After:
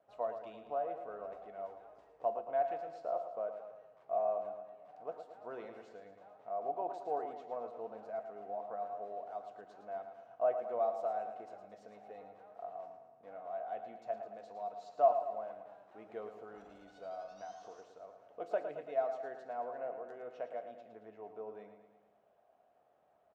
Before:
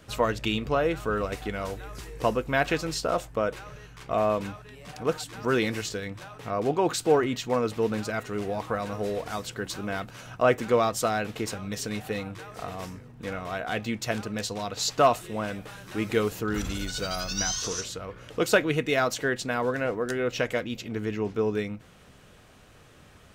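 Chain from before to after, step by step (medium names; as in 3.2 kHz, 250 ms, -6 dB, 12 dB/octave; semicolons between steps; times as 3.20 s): band-pass filter 690 Hz, Q 6.3; feedback delay 111 ms, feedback 55%, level -9 dB; on a send at -13 dB: reverberation RT60 0.60 s, pre-delay 3 ms; on the sum: trim -4.5 dB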